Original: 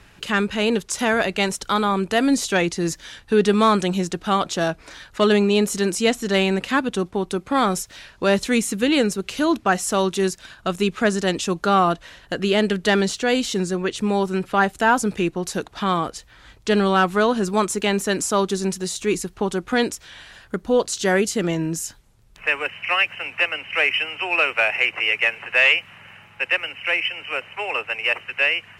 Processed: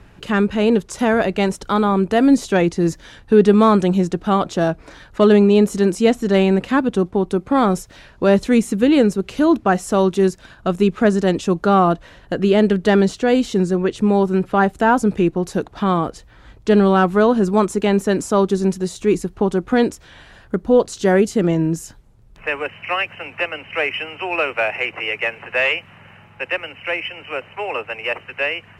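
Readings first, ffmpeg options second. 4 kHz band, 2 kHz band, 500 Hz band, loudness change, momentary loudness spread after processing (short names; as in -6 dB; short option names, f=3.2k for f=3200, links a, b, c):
-4.5 dB, -2.5 dB, +5.0 dB, +3.0 dB, 10 LU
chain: -af "tiltshelf=f=1.3k:g=6.5"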